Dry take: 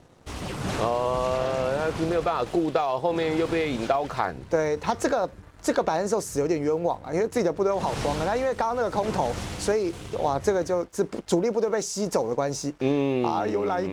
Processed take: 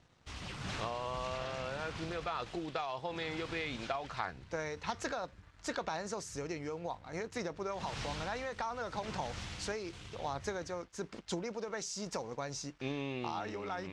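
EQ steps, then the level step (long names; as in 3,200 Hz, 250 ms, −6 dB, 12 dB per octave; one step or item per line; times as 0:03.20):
high-frequency loss of the air 100 metres
guitar amp tone stack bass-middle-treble 5-5-5
+4.0 dB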